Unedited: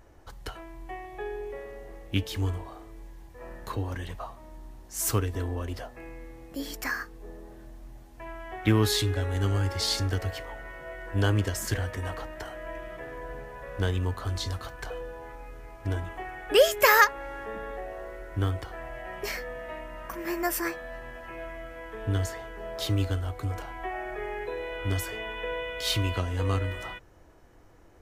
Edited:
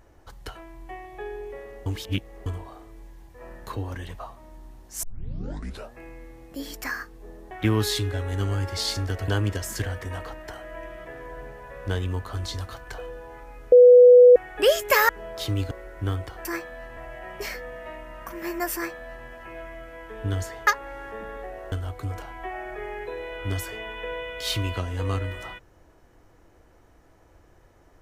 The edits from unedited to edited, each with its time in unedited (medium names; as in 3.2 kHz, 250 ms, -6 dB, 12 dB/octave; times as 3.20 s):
1.86–2.46 s: reverse
5.03 s: tape start 0.91 s
7.51–8.54 s: delete
10.31–11.20 s: delete
15.64–16.28 s: bleep 493 Hz -7.5 dBFS
17.01–18.06 s: swap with 22.50–23.12 s
20.57–21.09 s: copy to 18.80 s